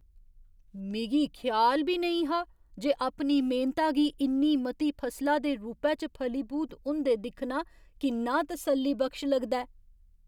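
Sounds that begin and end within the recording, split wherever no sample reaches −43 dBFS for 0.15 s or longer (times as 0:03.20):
0:00.75–0:02.44
0:02.78–0:07.63
0:08.01–0:09.65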